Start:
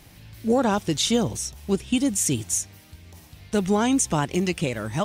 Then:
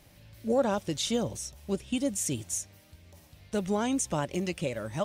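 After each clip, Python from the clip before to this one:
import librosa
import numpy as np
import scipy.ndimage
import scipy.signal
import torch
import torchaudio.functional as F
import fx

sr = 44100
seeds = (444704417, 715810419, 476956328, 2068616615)

y = fx.peak_eq(x, sr, hz=570.0, db=10.5, octaves=0.2)
y = y * librosa.db_to_amplitude(-8.0)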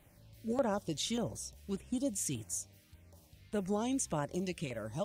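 y = fx.filter_lfo_notch(x, sr, shape='saw_down', hz=1.7, low_hz=530.0, high_hz=5800.0, q=0.93)
y = y * librosa.db_to_amplitude(-5.0)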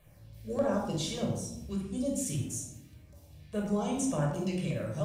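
y = fx.room_shoebox(x, sr, seeds[0], volume_m3=2400.0, walls='furnished', distance_m=5.7)
y = y * librosa.db_to_amplitude(-3.0)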